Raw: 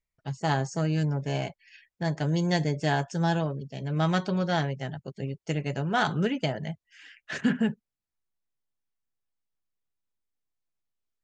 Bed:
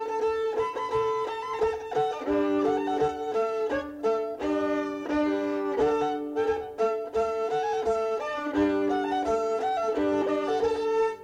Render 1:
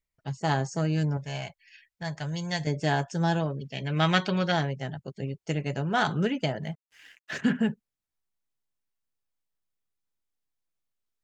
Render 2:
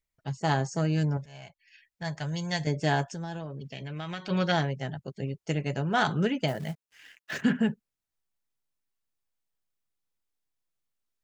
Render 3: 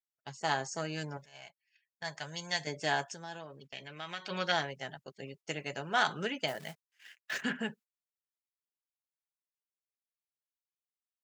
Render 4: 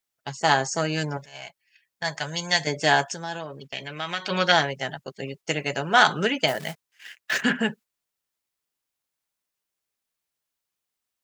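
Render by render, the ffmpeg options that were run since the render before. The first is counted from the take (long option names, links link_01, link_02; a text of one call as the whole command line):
ffmpeg -i in.wav -filter_complex "[0:a]asettb=1/sr,asplit=3[link_01][link_02][link_03];[link_01]atrim=end=1.174[link_04];[link_02]atrim=start=1.17:end=2.67,asetpts=PTS-STARTPTS,afade=type=in:duration=0.004:curve=qsin,afade=type=out:start_time=1.496:duration=0.004:curve=qsin,equalizer=frequency=320:width=0.77:gain=-13.5[link_05];[link_03]atrim=start=2.666[link_06];[link_04][link_05]acrossfade=duration=0.004:curve1=hsin:curve2=qsin[link_07];[link_07][link_06]acrossfade=duration=0.004:curve1=qsin:curve2=hsin,asettb=1/sr,asplit=3[link_08][link_09][link_10];[link_08]atrim=end=3.604[link_11];[link_09]atrim=start=3.6:end=4.52,asetpts=PTS-STARTPTS,afade=type=in:duration=0.004:curve=qsin,afade=type=out:start_time=0.916:duration=0.004:curve=qsin,equalizer=frequency=2500:width_type=o:width=1.5:gain=11.5[link_12];[link_10]atrim=start=4.516[link_13];[link_11][link_12]acrossfade=duration=0.004:curve1=hsin:curve2=qsin[link_14];[link_14][link_13]acrossfade=duration=0.004:curve1=qsin:curve2=hsin,asettb=1/sr,asplit=3[link_15][link_16][link_17];[link_15]atrim=end=6.624[link_18];[link_16]atrim=start=6.62:end=7.39,asetpts=PTS-STARTPTS,afade=type=in:duration=0.004:curve=qsin,afade=type=out:start_time=0.766:duration=0.004:curve=qsin,aeval=exprs='sgn(val(0))*max(abs(val(0))-0.00106,0)':channel_layout=same[link_19];[link_17]atrim=start=7.386[link_20];[link_18][link_19]acrossfade=duration=0.004:curve1=hsin:curve2=qsin[link_21];[link_21][link_20]acrossfade=duration=0.004:curve1=qsin:curve2=hsin" out.wav
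ffmpeg -i in.wav -filter_complex "[0:a]asplit=3[link_01][link_02][link_03];[link_01]afade=type=out:start_time=3.09:duration=0.02[link_04];[link_02]acompressor=threshold=-35dB:ratio=4:attack=3.2:release=140:knee=1:detection=peak,afade=type=in:start_time=3.09:duration=0.02,afade=type=out:start_time=4.29:duration=0.02[link_05];[link_03]afade=type=in:start_time=4.29:duration=0.02[link_06];[link_04][link_05][link_06]amix=inputs=3:normalize=0,asplit=3[link_07][link_08][link_09];[link_07]afade=type=out:start_time=6.47:duration=0.02[link_10];[link_08]acrusher=bits=5:mode=log:mix=0:aa=0.000001,afade=type=in:start_time=6.47:duration=0.02,afade=type=out:start_time=7.41:duration=0.02[link_11];[link_09]afade=type=in:start_time=7.41:duration=0.02[link_12];[link_10][link_11][link_12]amix=inputs=3:normalize=0,asplit=2[link_13][link_14];[link_13]atrim=end=1.26,asetpts=PTS-STARTPTS,afade=type=out:start_time=1.256:duration=0.004:curve=hsin:silence=0.133352[link_15];[link_14]atrim=start=1.26,asetpts=PTS-STARTPTS,afade=type=in:duration=0.81:silence=0.133352[link_16];[link_15][link_16]concat=n=2:v=0:a=1" out.wav
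ffmpeg -i in.wav -af "highpass=frequency=960:poles=1,agate=range=-17dB:threshold=-53dB:ratio=16:detection=peak" out.wav
ffmpeg -i in.wav -af "volume=11.5dB" out.wav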